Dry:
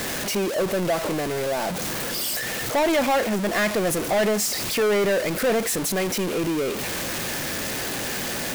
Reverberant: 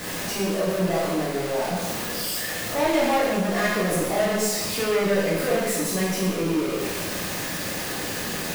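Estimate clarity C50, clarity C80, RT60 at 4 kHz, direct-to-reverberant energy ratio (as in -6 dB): 0.5 dB, 3.0 dB, 1.0 s, -6.5 dB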